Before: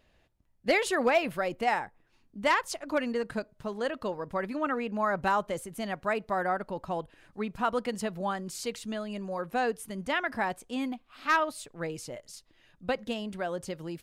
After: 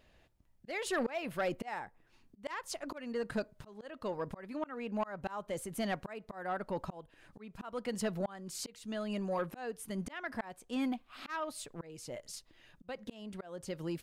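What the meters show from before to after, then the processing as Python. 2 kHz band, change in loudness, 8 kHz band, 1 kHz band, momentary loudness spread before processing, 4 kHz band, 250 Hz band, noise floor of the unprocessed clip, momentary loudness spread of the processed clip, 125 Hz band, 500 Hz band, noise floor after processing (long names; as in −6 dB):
−11.0 dB, −8.5 dB, −4.0 dB, −11.5 dB, 11 LU, −8.0 dB, −5.0 dB, −67 dBFS, 12 LU, −3.0 dB, −8.0 dB, −67 dBFS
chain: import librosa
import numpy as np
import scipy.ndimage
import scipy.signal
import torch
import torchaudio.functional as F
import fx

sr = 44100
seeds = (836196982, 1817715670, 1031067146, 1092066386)

y = fx.auto_swell(x, sr, attack_ms=470.0)
y = 10.0 ** (-26.5 / 20.0) * np.tanh(y / 10.0 ** (-26.5 / 20.0))
y = F.gain(torch.from_numpy(y), 1.0).numpy()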